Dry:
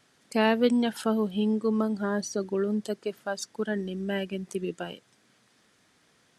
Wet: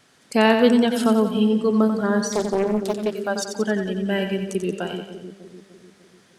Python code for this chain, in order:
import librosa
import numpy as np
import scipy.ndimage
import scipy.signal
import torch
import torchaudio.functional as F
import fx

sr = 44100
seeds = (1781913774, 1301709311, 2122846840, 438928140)

y = fx.echo_split(x, sr, split_hz=460.0, low_ms=298, high_ms=90, feedback_pct=52, wet_db=-7.0)
y = fx.doppler_dist(y, sr, depth_ms=0.68, at=(2.32, 3.14))
y = y * librosa.db_to_amplitude(6.5)